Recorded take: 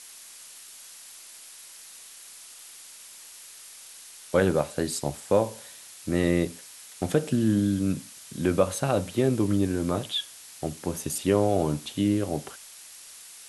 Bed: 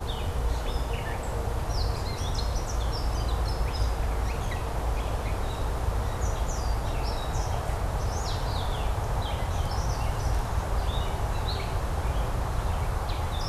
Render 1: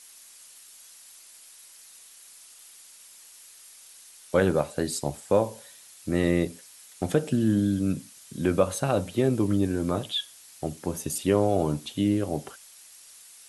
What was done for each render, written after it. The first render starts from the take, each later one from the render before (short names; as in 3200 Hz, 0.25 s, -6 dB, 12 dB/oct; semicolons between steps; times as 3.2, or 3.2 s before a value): denoiser 6 dB, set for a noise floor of -47 dBFS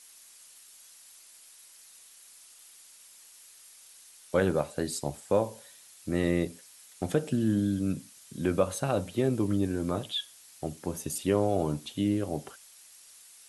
gain -3.5 dB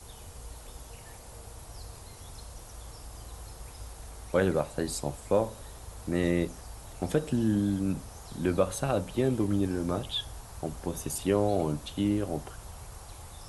add bed -17 dB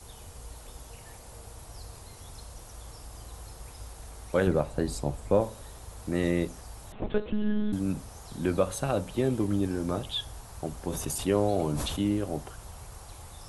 4.47–5.41 tilt -1.5 dB/oct; 6.92–7.73 monotone LPC vocoder at 8 kHz 210 Hz; 10.9–12.02 sustainer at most 24 dB/s